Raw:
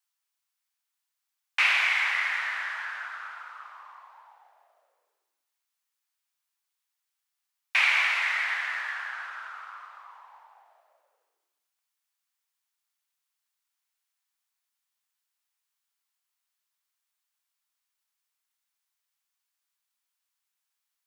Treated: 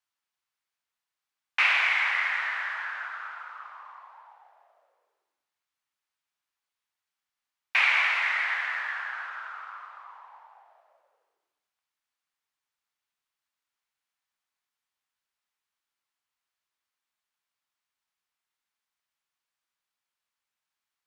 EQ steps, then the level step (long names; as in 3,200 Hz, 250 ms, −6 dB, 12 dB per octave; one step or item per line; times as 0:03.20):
low-pass filter 2,600 Hz 6 dB per octave
+2.5 dB